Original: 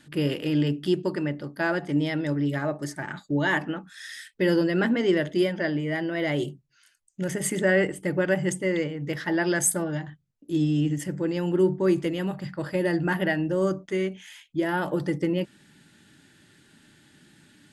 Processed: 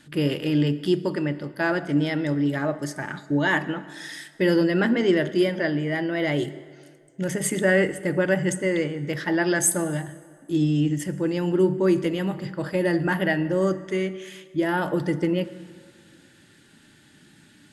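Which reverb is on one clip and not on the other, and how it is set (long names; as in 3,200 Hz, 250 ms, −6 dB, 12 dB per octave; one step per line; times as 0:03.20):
dense smooth reverb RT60 2 s, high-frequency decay 0.7×, DRR 14 dB
level +2 dB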